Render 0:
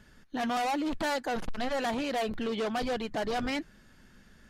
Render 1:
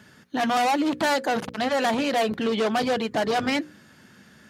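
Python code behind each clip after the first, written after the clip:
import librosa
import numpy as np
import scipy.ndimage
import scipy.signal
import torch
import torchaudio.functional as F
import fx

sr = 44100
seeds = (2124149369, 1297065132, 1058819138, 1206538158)

y = scipy.signal.sosfilt(scipy.signal.butter(4, 98.0, 'highpass', fs=sr, output='sos'), x)
y = fx.hum_notches(y, sr, base_hz=60, count=9)
y = y * 10.0 ** (8.0 / 20.0)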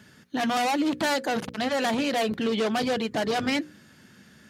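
y = fx.peak_eq(x, sr, hz=900.0, db=-4.0, octaves=2.0)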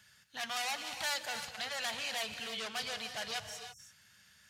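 y = fx.tone_stack(x, sr, knobs='10-0-10')
y = fx.spec_erase(y, sr, start_s=3.4, length_s=0.39, low_hz=210.0, high_hz=5300.0)
y = fx.rev_gated(y, sr, seeds[0], gate_ms=350, shape='rising', drr_db=7.5)
y = y * 10.0 ** (-3.0 / 20.0)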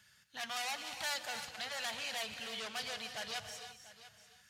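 y = x + 10.0 ** (-16.0 / 20.0) * np.pad(x, (int(691 * sr / 1000.0), 0))[:len(x)]
y = y * 10.0 ** (-2.5 / 20.0)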